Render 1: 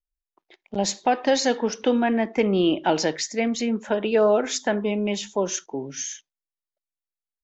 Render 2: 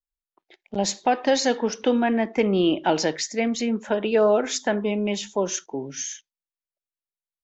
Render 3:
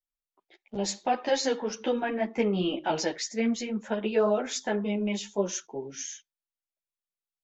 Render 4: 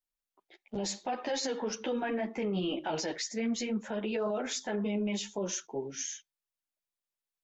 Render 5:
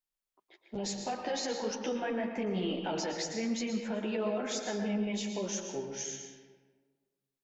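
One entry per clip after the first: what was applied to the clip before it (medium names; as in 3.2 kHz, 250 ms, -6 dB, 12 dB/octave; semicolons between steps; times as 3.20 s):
spectral noise reduction 8 dB
three-phase chorus; trim -2.5 dB
peak limiter -25 dBFS, peak gain reduction 11 dB
reverberation RT60 1.5 s, pre-delay 108 ms, DRR 4 dB; trim -2 dB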